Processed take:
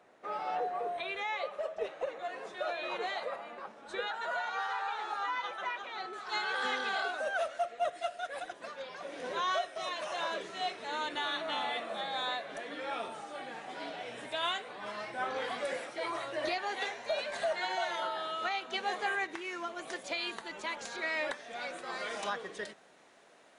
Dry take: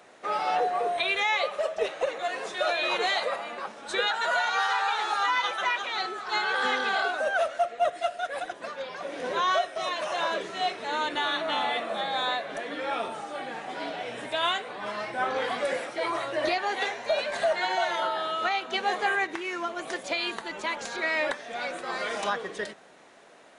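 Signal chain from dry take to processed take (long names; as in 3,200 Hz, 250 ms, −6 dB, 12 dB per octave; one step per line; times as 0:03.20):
high-shelf EQ 2,600 Hz −9.5 dB, from 0:06.13 +2.5 dB
level −7.5 dB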